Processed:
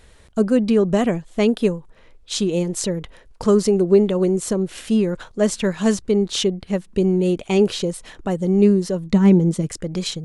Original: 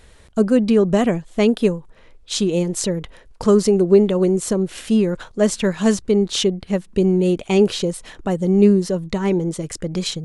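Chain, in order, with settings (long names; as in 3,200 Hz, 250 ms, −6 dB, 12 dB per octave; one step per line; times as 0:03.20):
0:09.09–0:09.67: parametric band 200 Hz +11 dB 0.9 octaves
level −1.5 dB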